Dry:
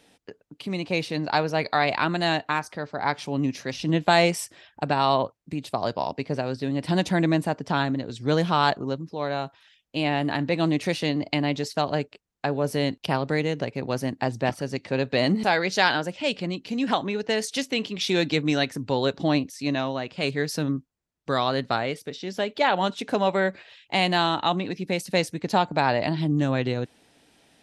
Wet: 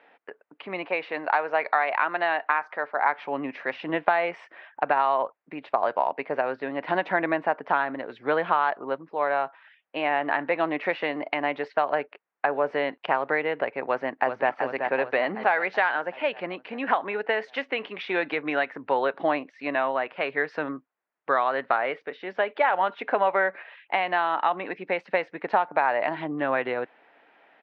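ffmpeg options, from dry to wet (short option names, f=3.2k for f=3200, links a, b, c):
-filter_complex "[0:a]asettb=1/sr,asplit=3[a][b][c];[a]atrim=end=0.874[d];[b]atrim=start=0.87:end=3.09,asetpts=PTS-STARTPTS,afade=t=in:d=0.004:c=qsin,afade=t=out:st=2.216:d=0.004:c=qsin,highpass=f=310:p=1[e];[c]atrim=start=3.086[f];[d][e]acrossfade=d=0.004:c1=hsin:c2=qsin[g];[g][f]acrossfade=d=0.004:c1=qsin:c2=hsin,asplit=2[h][i];[i]afade=t=in:st=13.87:d=0.01,afade=t=out:st=14.51:d=0.01,aecho=0:1:380|760|1140|1520|1900|2280|2660|3040:0.421697|0.253018|0.151811|0.0910864|0.0546519|0.0327911|0.0196747|0.0118048[j];[h][j]amix=inputs=2:normalize=0,highpass=680,acompressor=threshold=-26dB:ratio=6,lowpass=f=2.1k:w=0.5412,lowpass=f=2.1k:w=1.3066,volume=8.5dB"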